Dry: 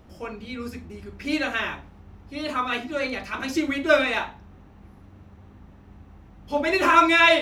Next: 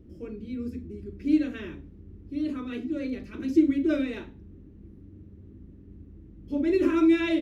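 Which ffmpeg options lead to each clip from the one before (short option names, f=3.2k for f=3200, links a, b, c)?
-af "firequalizer=gain_entry='entry(210,0);entry(320,6);entry(750,-24);entry(1800,-16)':delay=0.05:min_phase=1"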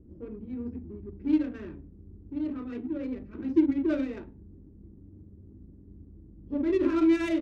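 -af "adynamicsmooth=sensitivity=3.5:basefreq=860,volume=-2dB"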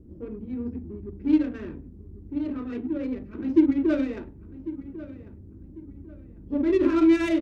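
-filter_complex "[0:a]asplit=2[a][b];[b]adelay=1097,lowpass=f=2.3k:p=1,volume=-16dB,asplit=2[c][d];[d]adelay=1097,lowpass=f=2.3k:p=1,volume=0.35,asplit=2[e][f];[f]adelay=1097,lowpass=f=2.3k:p=1,volume=0.35[g];[a][c][e][g]amix=inputs=4:normalize=0,volume=4dB"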